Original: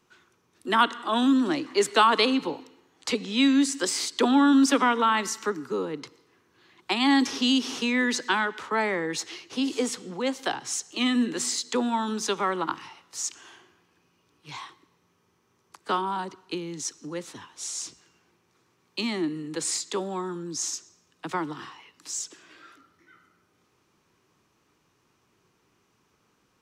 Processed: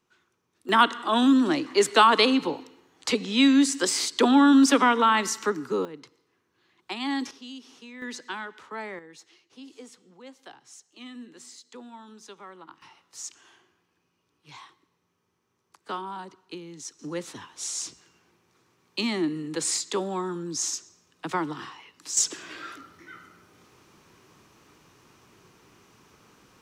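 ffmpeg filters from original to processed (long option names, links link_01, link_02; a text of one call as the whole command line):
ffmpeg -i in.wav -af "asetnsamples=nb_out_samples=441:pad=0,asendcmd='0.69 volume volume 2dB;5.85 volume volume -8dB;7.31 volume volume -19dB;8.02 volume volume -10.5dB;8.99 volume volume -18.5dB;12.82 volume volume -7dB;16.99 volume volume 1.5dB;22.17 volume volume 11dB',volume=-7.5dB" out.wav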